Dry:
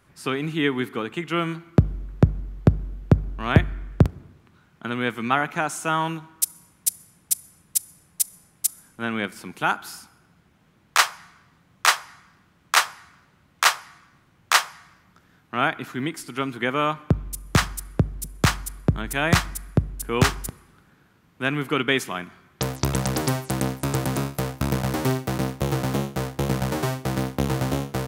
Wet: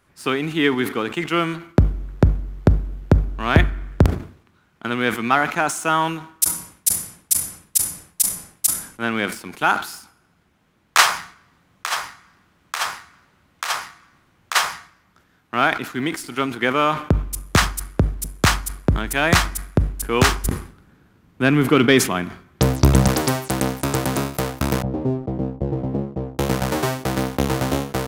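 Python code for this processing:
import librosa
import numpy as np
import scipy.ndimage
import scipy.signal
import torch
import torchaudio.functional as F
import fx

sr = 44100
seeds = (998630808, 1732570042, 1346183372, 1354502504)

y = fx.over_compress(x, sr, threshold_db=-25.0, ratio=-1.0, at=(11.07, 14.55), fade=0.02)
y = fx.low_shelf(y, sr, hz=380.0, db=11.0, at=(20.44, 23.08))
y = fx.gaussian_blur(y, sr, sigma=13.0, at=(24.82, 26.39))
y = fx.peak_eq(y, sr, hz=140.0, db=-5.0, octaves=1.0)
y = fx.leveller(y, sr, passes=1)
y = fx.sustainer(y, sr, db_per_s=120.0)
y = F.gain(torch.from_numpy(y), 1.0).numpy()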